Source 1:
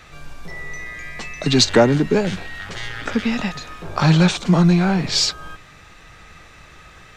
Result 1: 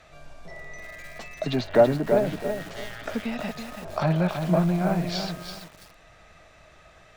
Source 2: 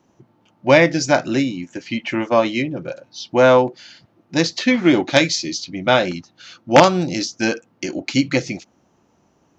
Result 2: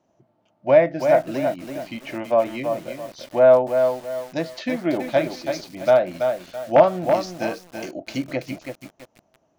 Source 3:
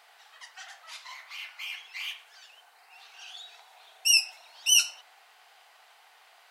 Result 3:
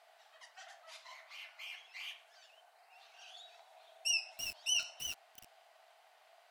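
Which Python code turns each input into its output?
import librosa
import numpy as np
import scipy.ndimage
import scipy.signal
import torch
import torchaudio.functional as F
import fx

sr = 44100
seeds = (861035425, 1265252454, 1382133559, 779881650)

y = fx.env_lowpass_down(x, sr, base_hz=2100.0, full_db=-12.5)
y = fx.peak_eq(y, sr, hz=640.0, db=14.5, octaves=0.35)
y = fx.echo_crushed(y, sr, ms=330, feedback_pct=35, bits=5, wet_db=-6)
y = y * librosa.db_to_amplitude(-10.0)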